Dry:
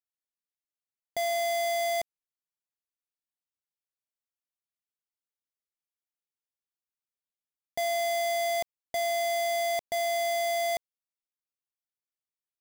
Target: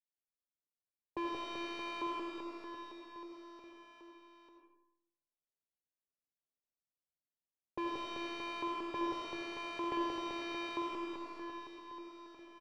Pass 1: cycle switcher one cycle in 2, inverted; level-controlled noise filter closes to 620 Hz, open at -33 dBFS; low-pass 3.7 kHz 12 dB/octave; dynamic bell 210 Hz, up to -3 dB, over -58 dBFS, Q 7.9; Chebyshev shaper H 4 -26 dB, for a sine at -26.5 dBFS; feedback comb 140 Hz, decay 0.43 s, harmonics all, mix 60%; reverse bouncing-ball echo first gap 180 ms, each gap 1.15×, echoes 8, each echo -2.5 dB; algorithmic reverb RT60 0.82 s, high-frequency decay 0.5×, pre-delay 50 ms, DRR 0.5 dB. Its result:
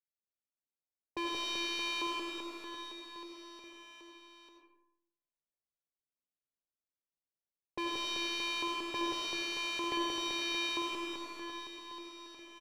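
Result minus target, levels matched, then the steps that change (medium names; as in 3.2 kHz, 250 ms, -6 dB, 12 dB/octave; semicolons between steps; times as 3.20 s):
4 kHz band +7.0 dB
change: low-pass 1.5 kHz 12 dB/octave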